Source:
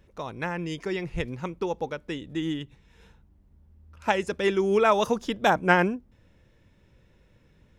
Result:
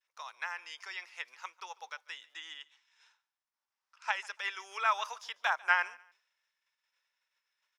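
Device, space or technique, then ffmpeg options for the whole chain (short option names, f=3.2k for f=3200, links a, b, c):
headphones lying on a table: -filter_complex "[0:a]acrossover=split=3400[a][b];[b]acompressor=threshold=-49dB:ratio=4:attack=1:release=60[c];[a][c]amix=inputs=2:normalize=0,agate=range=-33dB:threshold=-51dB:ratio=3:detection=peak,highpass=f=1k:w=0.5412,highpass=f=1k:w=1.3066,equalizer=f=5.3k:t=o:w=0.44:g=8.5,asettb=1/sr,asplit=3[d][e][f];[d]atrim=end=2.344[g];[e]atrim=start=2.34:end=4.12,asetpts=PTS-STARTPTS,afade=t=in:d=0.004:c=qsin,afade=t=out:st=1.776:d=0.004:c=qsin,lowpass=f=9.2k:w=0.5412,lowpass=f=9.2k:w=1.3066[h];[f]atrim=start=4.116[i];[g][h]acrossfade=d=0.004:c1=hsin:c2=qsin[j];[j][i]acrossfade=d=0.004:c1=qsin:c2=hsin,aecho=1:1:145|290:0.0708|0.0184,volume=-3.5dB"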